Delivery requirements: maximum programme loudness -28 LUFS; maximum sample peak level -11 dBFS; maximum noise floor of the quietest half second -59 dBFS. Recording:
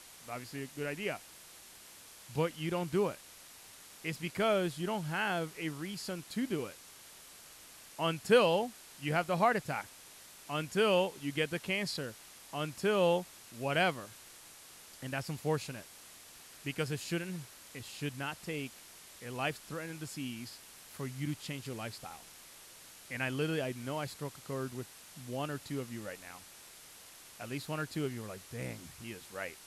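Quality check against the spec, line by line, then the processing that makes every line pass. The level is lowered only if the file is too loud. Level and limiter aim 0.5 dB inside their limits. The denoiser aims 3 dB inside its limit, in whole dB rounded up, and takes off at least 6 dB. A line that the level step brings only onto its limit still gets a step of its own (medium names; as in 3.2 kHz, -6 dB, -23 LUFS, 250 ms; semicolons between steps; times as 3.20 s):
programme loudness -35.5 LUFS: pass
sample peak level -14.0 dBFS: pass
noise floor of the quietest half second -54 dBFS: fail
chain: noise reduction 8 dB, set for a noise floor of -54 dBFS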